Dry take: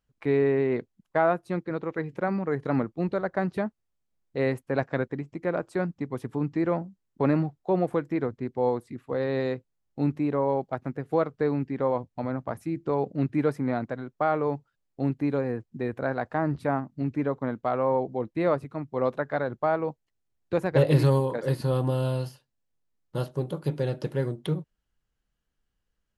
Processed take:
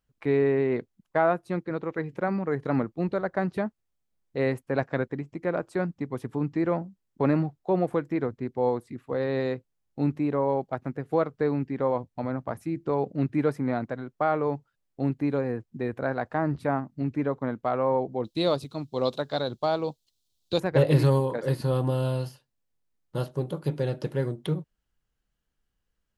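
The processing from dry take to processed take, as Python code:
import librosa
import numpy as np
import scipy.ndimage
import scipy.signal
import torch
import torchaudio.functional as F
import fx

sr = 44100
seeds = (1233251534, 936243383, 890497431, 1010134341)

y = fx.high_shelf_res(x, sr, hz=2700.0, db=12.0, q=3.0, at=(18.24, 20.6))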